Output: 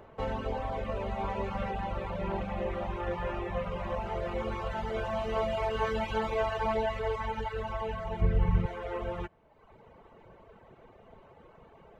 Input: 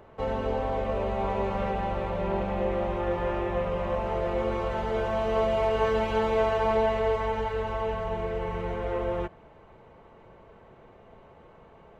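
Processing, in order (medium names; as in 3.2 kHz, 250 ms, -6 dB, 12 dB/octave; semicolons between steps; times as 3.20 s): 8.21–8.66 s: tone controls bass +14 dB, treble -3 dB; reverb removal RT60 0.98 s; dynamic bell 440 Hz, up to -5 dB, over -39 dBFS, Q 0.79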